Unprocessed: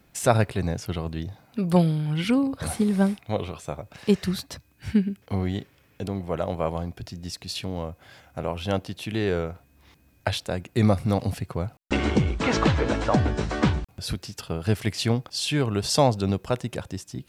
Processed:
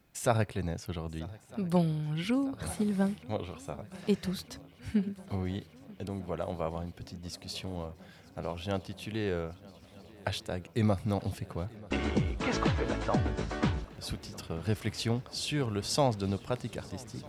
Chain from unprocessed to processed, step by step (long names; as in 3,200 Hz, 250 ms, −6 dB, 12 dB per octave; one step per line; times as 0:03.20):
feedback echo with a long and a short gap by turns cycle 1,251 ms, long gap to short 3 to 1, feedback 74%, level −22.5 dB
level −7.5 dB